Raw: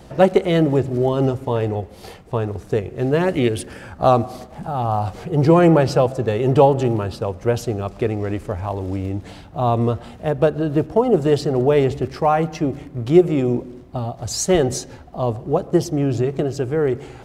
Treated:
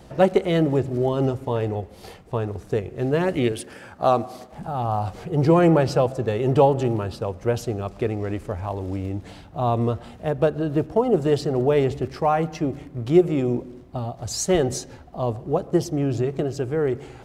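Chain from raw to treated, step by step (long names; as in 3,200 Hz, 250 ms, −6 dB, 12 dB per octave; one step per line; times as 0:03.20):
0:03.52–0:04.53: high-pass filter 230 Hz 6 dB per octave
level −3.5 dB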